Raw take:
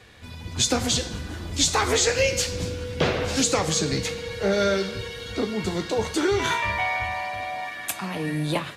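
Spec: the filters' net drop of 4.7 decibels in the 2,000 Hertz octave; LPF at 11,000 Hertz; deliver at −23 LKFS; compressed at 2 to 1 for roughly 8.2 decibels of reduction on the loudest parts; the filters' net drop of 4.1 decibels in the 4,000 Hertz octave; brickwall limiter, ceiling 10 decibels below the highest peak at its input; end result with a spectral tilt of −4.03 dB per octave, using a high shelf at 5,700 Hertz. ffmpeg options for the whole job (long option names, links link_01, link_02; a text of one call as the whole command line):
ffmpeg -i in.wav -af "lowpass=11000,equalizer=frequency=2000:width_type=o:gain=-5,equalizer=frequency=4000:width_type=o:gain=-6.5,highshelf=frequency=5700:gain=7,acompressor=threshold=-33dB:ratio=2,volume=11.5dB,alimiter=limit=-13dB:level=0:latency=1" out.wav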